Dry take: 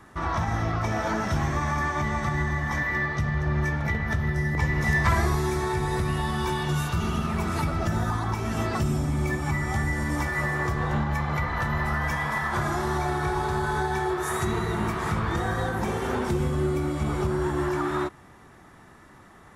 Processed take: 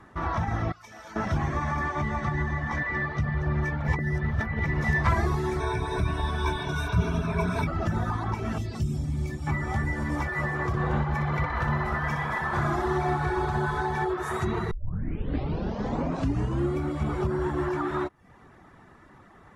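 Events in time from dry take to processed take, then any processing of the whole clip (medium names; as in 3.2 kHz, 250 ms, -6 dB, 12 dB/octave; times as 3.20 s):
0.72–1.16 s: pre-emphasis filter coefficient 0.9
2.16–3.24 s: low-pass 8.5 kHz
3.88–4.66 s: reverse
5.60–7.67 s: rippled EQ curve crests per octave 1.6, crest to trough 15 dB
8.58–9.47 s: FFT filter 110 Hz 0 dB, 1.3 kHz -15 dB, 4.6 kHz +2 dB
10.67–14.05 s: feedback delay 62 ms, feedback 53%, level -5.5 dB
14.71 s: tape start 2.05 s
whole clip: reverb removal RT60 0.5 s; low-pass 2.6 kHz 6 dB/octave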